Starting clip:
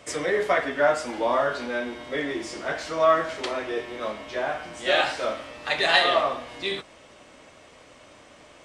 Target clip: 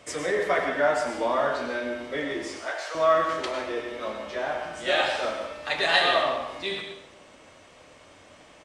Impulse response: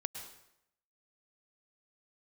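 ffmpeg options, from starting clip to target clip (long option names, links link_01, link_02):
-filter_complex "[0:a]asettb=1/sr,asplit=3[link_01][link_02][link_03];[link_01]atrim=end=2.504[link_04];[link_02]atrim=start=2.5:end=2.95,asetpts=PTS-STARTPTS,afade=type=in:duration=0.004:curve=qsin,afade=type=out:start_time=0.446:duration=0.004:curve=qsin,highpass=frequency=540:width=0.5412,highpass=frequency=540:width=1.3066[link_05];[link_03]atrim=start=2.946[link_06];[link_04][link_05]acrossfade=duration=0.004:curve1=hsin:curve2=qsin[link_07];[link_07][link_06]acrossfade=duration=0.004:curve1=qsin:curve2=hsin,asplit=2[link_08][link_09];[link_09]adelay=90,highpass=300,lowpass=3400,asoftclip=type=hard:threshold=-13dB,volume=-20dB[link_10];[link_08][link_10]amix=inputs=2:normalize=0[link_11];[1:a]atrim=start_sample=2205,asetrate=48510,aresample=44100[link_12];[link_11][link_12]afir=irnorm=-1:irlink=0"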